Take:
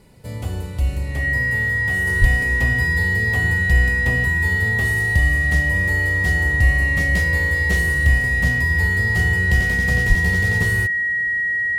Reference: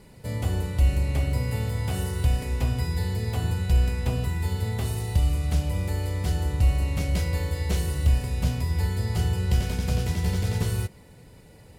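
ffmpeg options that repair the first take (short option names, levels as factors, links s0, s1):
-filter_complex "[0:a]bandreject=f=1900:w=30,asplit=3[s0][s1][s2];[s0]afade=t=out:st=2.2:d=0.02[s3];[s1]highpass=f=140:w=0.5412,highpass=f=140:w=1.3066,afade=t=in:st=2.2:d=0.02,afade=t=out:st=2.32:d=0.02[s4];[s2]afade=t=in:st=2.32:d=0.02[s5];[s3][s4][s5]amix=inputs=3:normalize=0,asplit=3[s6][s7][s8];[s6]afade=t=out:st=10.08:d=0.02[s9];[s7]highpass=f=140:w=0.5412,highpass=f=140:w=1.3066,afade=t=in:st=10.08:d=0.02,afade=t=out:st=10.2:d=0.02[s10];[s8]afade=t=in:st=10.2:d=0.02[s11];[s9][s10][s11]amix=inputs=3:normalize=0,asetnsamples=n=441:p=0,asendcmd='2.07 volume volume -4dB',volume=1"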